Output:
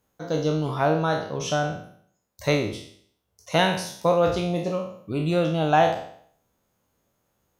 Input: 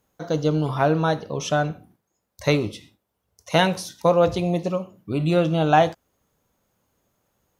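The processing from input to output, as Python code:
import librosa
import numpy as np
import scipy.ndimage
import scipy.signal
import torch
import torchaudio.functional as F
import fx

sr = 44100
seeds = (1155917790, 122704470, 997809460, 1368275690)

y = fx.spec_trails(x, sr, decay_s=0.6)
y = y * librosa.db_to_amplitude(-3.5)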